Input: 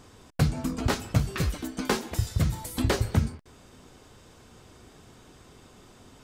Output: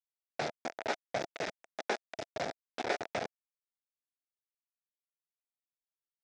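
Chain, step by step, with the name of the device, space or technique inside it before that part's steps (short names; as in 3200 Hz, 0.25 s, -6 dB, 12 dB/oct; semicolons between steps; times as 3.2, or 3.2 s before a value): hand-held game console (bit-crush 4-bit; speaker cabinet 480–4900 Hz, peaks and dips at 670 Hz +8 dB, 1100 Hz -10 dB, 3000 Hz -8 dB, 4300 Hz -7 dB); gain -4.5 dB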